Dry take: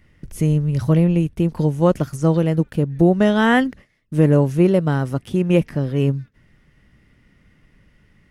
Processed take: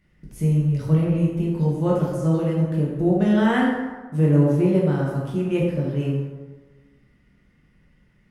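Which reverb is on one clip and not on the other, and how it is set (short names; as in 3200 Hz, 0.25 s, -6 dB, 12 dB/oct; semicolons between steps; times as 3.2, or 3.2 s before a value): plate-style reverb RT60 1.3 s, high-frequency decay 0.55×, DRR -4.5 dB; gain -11 dB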